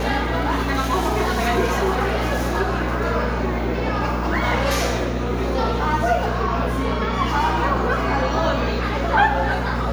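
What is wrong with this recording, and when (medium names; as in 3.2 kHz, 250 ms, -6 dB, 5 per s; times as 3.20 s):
hum 60 Hz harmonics 4 -25 dBFS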